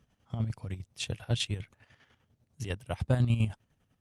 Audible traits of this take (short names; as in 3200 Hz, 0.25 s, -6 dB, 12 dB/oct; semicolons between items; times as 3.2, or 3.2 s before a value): chopped level 10 Hz, depth 60%, duty 45%; Opus